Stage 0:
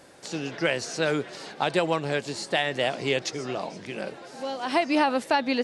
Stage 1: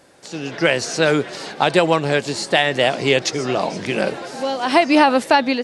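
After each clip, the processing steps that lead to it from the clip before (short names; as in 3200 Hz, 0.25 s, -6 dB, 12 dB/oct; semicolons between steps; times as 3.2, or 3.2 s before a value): AGC gain up to 15 dB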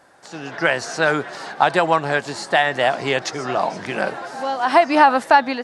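band shelf 1100 Hz +8.5 dB; gain -5.5 dB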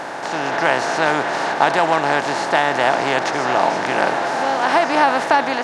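per-bin compression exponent 0.4; gain -5.5 dB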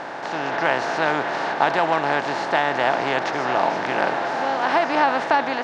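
LPF 4800 Hz 12 dB/oct; gain -3.5 dB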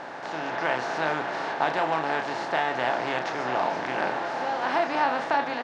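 doubler 32 ms -6.5 dB; gain -6.5 dB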